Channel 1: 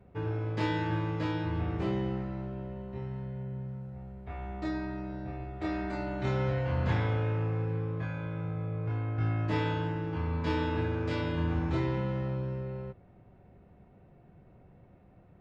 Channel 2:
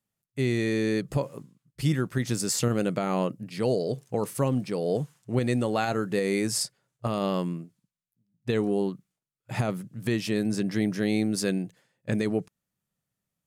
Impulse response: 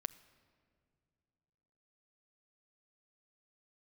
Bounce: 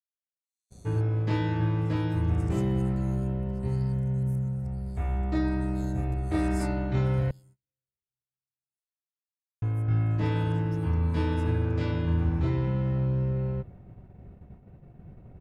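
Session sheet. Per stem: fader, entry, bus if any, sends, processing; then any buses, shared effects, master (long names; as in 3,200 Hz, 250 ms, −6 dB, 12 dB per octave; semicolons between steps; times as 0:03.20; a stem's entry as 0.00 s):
−2.0 dB, 0.70 s, muted 0:07.31–0:09.62, send −13 dB, no processing
−14.0 dB, 0.00 s, send −7.5 dB, inverse Chebyshev high-pass filter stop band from 1,700 Hz, stop band 60 dB; comb filter 3.6 ms, depth 64%; volume swells 286 ms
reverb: on, pre-delay 7 ms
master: noise gate −57 dBFS, range −30 dB; low-shelf EQ 220 Hz +11 dB; speech leveller within 3 dB 0.5 s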